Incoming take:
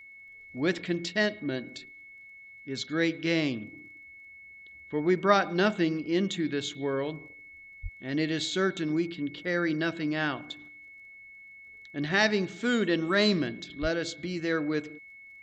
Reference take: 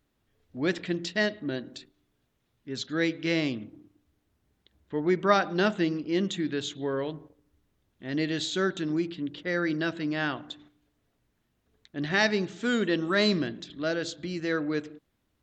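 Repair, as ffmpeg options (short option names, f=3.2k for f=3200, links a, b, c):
-filter_complex "[0:a]adeclick=t=4,bandreject=f=2.2k:w=30,asplit=3[a][b][c];[a]afade=t=out:st=7.82:d=0.02[d];[b]highpass=f=140:w=0.5412,highpass=f=140:w=1.3066,afade=t=in:st=7.82:d=0.02,afade=t=out:st=7.94:d=0.02[e];[c]afade=t=in:st=7.94:d=0.02[f];[d][e][f]amix=inputs=3:normalize=0,asplit=3[g][h][i];[g]afade=t=out:st=13.81:d=0.02[j];[h]highpass=f=140:w=0.5412,highpass=f=140:w=1.3066,afade=t=in:st=13.81:d=0.02,afade=t=out:st=13.93:d=0.02[k];[i]afade=t=in:st=13.93:d=0.02[l];[j][k][l]amix=inputs=3:normalize=0"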